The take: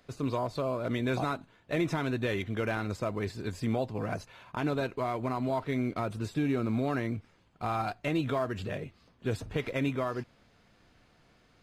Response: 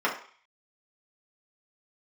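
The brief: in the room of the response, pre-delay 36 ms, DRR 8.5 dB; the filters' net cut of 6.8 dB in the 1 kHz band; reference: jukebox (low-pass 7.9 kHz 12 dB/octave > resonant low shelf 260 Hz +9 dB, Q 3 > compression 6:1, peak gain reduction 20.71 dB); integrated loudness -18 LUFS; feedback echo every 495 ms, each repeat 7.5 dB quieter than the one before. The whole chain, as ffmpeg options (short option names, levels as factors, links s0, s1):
-filter_complex "[0:a]equalizer=f=1000:t=o:g=-8.5,aecho=1:1:495|990|1485|1980|2475:0.422|0.177|0.0744|0.0312|0.0131,asplit=2[s0][s1];[1:a]atrim=start_sample=2205,adelay=36[s2];[s1][s2]afir=irnorm=-1:irlink=0,volume=0.0794[s3];[s0][s3]amix=inputs=2:normalize=0,lowpass=7900,lowshelf=f=260:t=q:w=3:g=9,acompressor=threshold=0.0126:ratio=6,volume=14.1"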